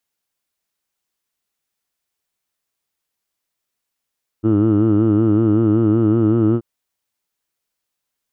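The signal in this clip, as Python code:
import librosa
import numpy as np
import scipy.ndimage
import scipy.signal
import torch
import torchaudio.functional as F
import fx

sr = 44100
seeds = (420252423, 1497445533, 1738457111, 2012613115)

y = fx.formant_vowel(sr, seeds[0], length_s=2.18, hz=106.0, glide_st=1.0, vibrato_hz=5.3, vibrato_st=0.9, f1_hz=320.0, f2_hz=1300.0, f3_hz=2900.0)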